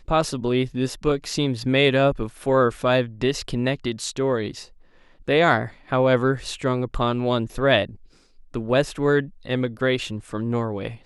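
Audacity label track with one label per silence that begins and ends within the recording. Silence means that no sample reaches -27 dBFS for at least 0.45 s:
4.590000	5.280000	silence
7.850000	8.540000	silence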